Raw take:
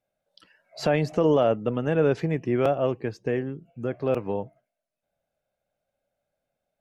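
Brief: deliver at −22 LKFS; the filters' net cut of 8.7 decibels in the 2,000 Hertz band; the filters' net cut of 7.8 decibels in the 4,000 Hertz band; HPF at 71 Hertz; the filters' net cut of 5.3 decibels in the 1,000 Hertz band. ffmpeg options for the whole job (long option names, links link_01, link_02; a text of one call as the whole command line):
ffmpeg -i in.wav -af "highpass=71,equalizer=frequency=1000:width_type=o:gain=-6.5,equalizer=frequency=2000:width_type=o:gain=-7.5,equalizer=frequency=4000:width_type=o:gain=-7.5,volume=5dB" out.wav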